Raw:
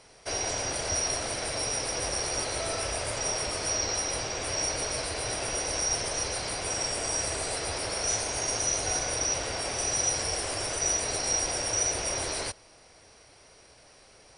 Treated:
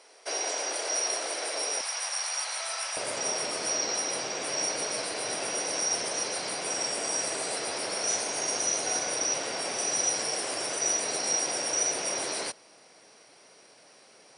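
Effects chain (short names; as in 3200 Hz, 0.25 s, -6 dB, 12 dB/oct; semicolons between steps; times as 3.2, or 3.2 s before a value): HPF 340 Hz 24 dB/oct, from 1.81 s 800 Hz, from 2.97 s 170 Hz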